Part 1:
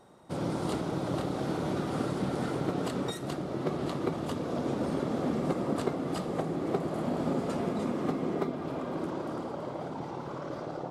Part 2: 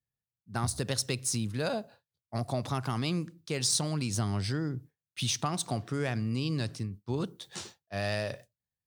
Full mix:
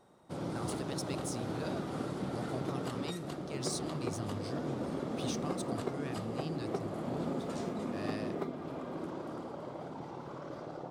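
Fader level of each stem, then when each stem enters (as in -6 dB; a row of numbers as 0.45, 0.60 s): -6.0, -11.5 dB; 0.00, 0.00 s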